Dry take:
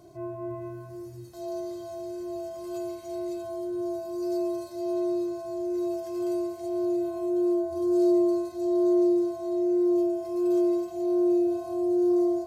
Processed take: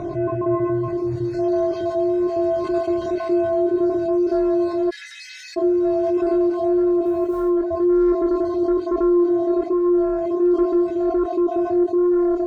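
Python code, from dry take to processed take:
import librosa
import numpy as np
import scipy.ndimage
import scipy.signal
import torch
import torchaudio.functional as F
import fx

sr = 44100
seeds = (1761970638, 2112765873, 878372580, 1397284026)

y = fx.spec_dropout(x, sr, seeds[0], share_pct=29)
y = scipy.signal.sosfilt(scipy.signal.butter(2, 2600.0, 'lowpass', fs=sr, output='sos'), y)
y = fx.echo_feedback(y, sr, ms=183, feedback_pct=53, wet_db=-15)
y = fx.fold_sine(y, sr, drive_db=5, ceiling_db=-14.5)
y = fx.quant_float(y, sr, bits=6, at=(7.04, 7.48), fade=0.02)
y = fx.rider(y, sr, range_db=3, speed_s=0.5)
y = fx.chorus_voices(y, sr, voices=4, hz=0.39, base_ms=23, depth_ms=3.0, mix_pct=35)
y = fx.steep_highpass(y, sr, hz=1800.0, slope=72, at=(4.89, 5.56), fade=0.02)
y = fx.env_flatten(y, sr, amount_pct=50)
y = y * 10.0 ** (1.5 / 20.0)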